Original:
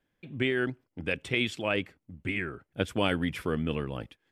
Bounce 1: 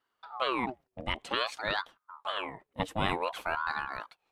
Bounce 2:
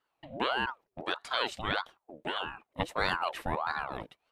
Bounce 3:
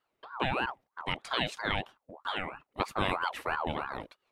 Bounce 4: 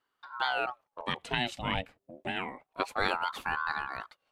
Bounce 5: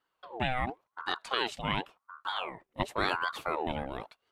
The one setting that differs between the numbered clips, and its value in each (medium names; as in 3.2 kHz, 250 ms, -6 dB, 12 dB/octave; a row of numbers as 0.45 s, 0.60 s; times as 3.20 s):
ring modulator with a swept carrier, at: 0.53 Hz, 1.6 Hz, 3.1 Hz, 0.27 Hz, 0.92 Hz